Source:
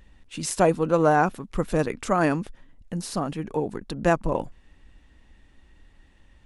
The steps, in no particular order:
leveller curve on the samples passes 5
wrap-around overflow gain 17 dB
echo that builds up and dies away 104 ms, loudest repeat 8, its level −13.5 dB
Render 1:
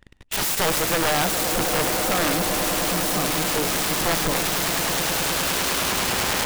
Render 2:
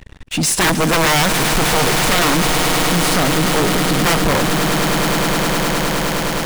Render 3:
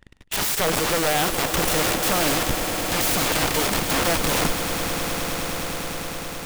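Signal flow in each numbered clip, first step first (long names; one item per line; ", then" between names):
echo that builds up and dies away, then leveller curve on the samples, then wrap-around overflow
wrap-around overflow, then echo that builds up and dies away, then leveller curve on the samples
leveller curve on the samples, then wrap-around overflow, then echo that builds up and dies away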